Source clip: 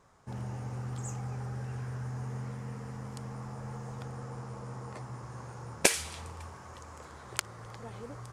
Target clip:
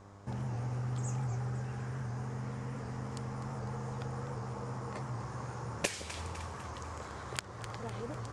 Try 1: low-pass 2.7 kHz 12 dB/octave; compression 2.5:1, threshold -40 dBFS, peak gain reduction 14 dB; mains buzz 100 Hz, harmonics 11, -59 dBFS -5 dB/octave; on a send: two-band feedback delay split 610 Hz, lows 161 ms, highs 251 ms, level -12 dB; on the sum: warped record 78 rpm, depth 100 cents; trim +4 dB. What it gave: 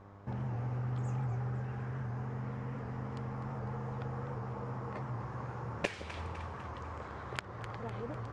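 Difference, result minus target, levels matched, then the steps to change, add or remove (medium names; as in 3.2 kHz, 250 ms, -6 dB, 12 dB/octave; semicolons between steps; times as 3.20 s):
8 kHz band -14.0 dB
change: low-pass 8.1 kHz 12 dB/octave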